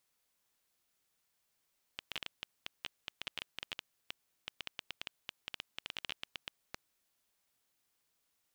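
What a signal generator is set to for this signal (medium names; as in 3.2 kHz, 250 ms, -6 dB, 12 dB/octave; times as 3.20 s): random clicks 10 per s -21.5 dBFS 4.89 s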